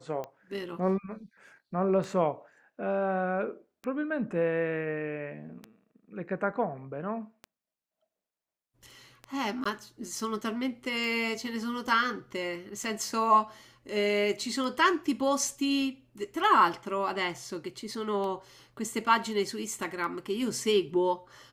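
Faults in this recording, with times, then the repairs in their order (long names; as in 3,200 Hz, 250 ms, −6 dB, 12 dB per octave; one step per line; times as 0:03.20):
scratch tick 33 1/3 rpm −25 dBFS
0:09.64–0:09.65: drop-out 15 ms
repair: click removal
repair the gap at 0:09.64, 15 ms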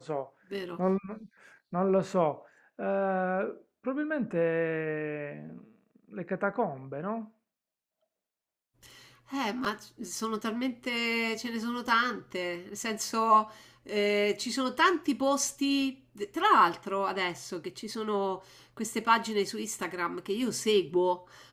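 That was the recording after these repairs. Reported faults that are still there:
none of them is left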